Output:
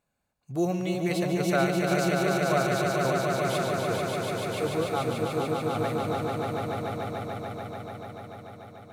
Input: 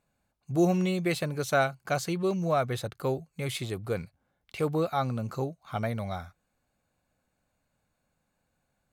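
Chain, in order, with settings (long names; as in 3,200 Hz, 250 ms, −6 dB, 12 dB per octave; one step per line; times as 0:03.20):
low-shelf EQ 180 Hz −4 dB
on a send: echo that builds up and dies away 146 ms, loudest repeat 5, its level −4.5 dB
on the sum: level −2 dB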